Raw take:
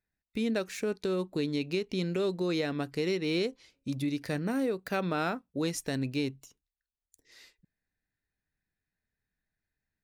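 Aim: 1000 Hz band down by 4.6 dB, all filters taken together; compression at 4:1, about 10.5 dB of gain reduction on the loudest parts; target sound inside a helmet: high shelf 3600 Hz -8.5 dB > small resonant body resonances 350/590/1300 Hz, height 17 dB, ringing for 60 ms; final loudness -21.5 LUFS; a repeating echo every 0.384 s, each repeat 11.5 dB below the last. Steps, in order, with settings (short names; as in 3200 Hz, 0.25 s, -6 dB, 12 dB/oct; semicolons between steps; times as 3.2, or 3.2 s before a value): bell 1000 Hz -6 dB; compressor 4:1, threshold -40 dBFS; high shelf 3600 Hz -8.5 dB; feedback echo 0.384 s, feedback 27%, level -11.5 dB; small resonant body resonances 350/590/1300 Hz, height 17 dB, ringing for 60 ms; gain +12 dB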